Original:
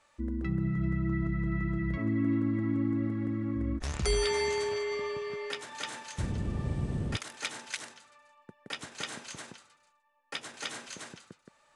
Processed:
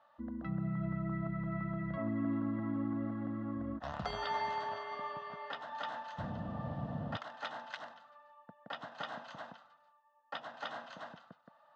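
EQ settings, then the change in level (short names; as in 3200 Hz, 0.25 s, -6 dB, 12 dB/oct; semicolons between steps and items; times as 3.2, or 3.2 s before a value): speaker cabinet 200–3200 Hz, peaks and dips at 440 Hz +4 dB, 670 Hz +8 dB, 2200 Hz +7 dB; fixed phaser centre 950 Hz, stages 4; +2.0 dB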